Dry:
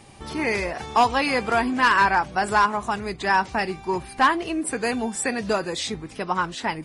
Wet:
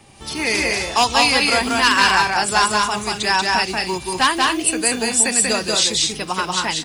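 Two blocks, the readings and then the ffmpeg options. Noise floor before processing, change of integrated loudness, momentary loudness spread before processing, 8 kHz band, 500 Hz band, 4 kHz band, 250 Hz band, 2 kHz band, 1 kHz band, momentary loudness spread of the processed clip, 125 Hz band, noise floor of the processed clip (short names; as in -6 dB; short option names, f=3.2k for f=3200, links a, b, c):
-43 dBFS, +6.0 dB, 9 LU, +16.0 dB, +2.0 dB, +14.0 dB, +2.5 dB, +5.5 dB, +2.5 dB, 7 LU, +2.0 dB, -34 dBFS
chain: -filter_complex "[0:a]equalizer=f=2.7k:w=5.2:g=2.5,acrossover=split=350|550|3300[a][b][c][d];[a]acrusher=samples=14:mix=1:aa=0.000001[e];[d]dynaudnorm=f=150:g=3:m=14.5dB[f];[e][b][c][f]amix=inputs=4:normalize=0,aecho=1:1:186.6|224.5:0.794|0.316"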